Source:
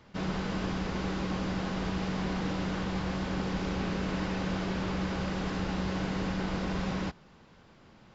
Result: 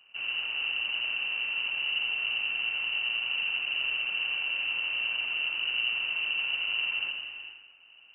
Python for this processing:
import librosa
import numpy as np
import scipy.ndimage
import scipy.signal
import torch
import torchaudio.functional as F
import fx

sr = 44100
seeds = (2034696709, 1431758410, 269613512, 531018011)

p1 = fx.lower_of_two(x, sr, delay_ms=0.53)
p2 = fx.low_shelf(p1, sr, hz=210.0, db=11.5)
p3 = p2 + fx.echo_feedback(p2, sr, ms=86, feedback_pct=54, wet_db=-6.0, dry=0)
p4 = fx.rev_gated(p3, sr, seeds[0], gate_ms=460, shape='rising', drr_db=9.0)
p5 = fx.freq_invert(p4, sr, carrier_hz=2900)
y = p5 * 10.0 ** (-8.5 / 20.0)